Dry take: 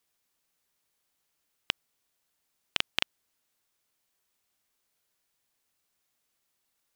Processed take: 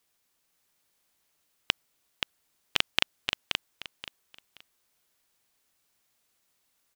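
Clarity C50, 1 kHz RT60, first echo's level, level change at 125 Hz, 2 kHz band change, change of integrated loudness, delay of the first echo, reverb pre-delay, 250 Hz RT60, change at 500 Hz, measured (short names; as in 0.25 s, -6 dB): none, none, -5.5 dB, +4.5 dB, +4.5 dB, +2.0 dB, 0.527 s, none, none, +4.5 dB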